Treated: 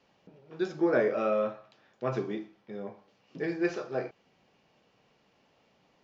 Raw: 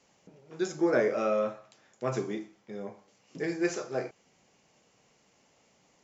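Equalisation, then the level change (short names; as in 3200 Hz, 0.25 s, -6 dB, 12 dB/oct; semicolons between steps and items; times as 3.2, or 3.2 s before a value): LPF 4400 Hz 24 dB/oct; notch 2100 Hz, Q 14; 0.0 dB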